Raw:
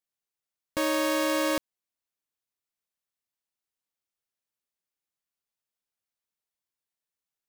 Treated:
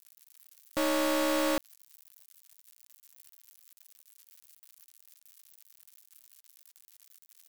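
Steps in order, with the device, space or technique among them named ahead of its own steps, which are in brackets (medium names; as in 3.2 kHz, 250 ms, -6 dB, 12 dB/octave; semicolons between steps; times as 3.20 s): budget class-D amplifier (dead-time distortion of 0.26 ms; zero-crossing glitches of -33 dBFS)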